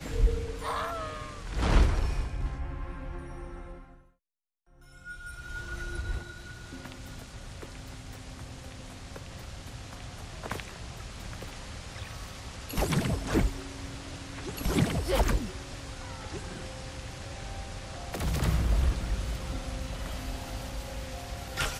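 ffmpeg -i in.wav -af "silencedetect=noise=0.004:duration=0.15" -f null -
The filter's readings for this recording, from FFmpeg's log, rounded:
silence_start: 4.00
silence_end: 4.78 | silence_duration: 0.78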